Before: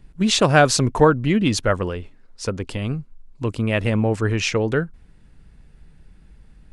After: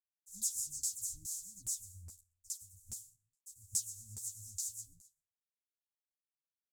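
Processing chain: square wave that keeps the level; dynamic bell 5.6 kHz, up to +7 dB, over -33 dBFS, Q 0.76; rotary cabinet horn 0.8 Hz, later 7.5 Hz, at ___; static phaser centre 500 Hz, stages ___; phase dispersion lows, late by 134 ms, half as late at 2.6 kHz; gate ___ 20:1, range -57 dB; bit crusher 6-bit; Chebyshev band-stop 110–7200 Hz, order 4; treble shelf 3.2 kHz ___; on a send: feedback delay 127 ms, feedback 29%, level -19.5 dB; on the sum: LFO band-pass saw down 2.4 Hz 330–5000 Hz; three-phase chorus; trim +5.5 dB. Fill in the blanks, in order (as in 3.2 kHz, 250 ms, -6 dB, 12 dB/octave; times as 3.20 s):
2.51 s, 6, -34 dBFS, +9 dB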